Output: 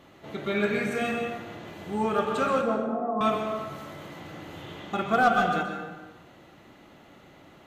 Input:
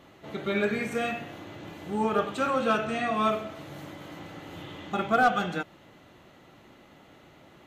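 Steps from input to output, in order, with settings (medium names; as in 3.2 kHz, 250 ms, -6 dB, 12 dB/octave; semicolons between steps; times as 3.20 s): 2.61–3.21 s: elliptic band-pass 200–1000 Hz; plate-style reverb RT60 1.2 s, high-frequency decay 0.55×, pre-delay 110 ms, DRR 4 dB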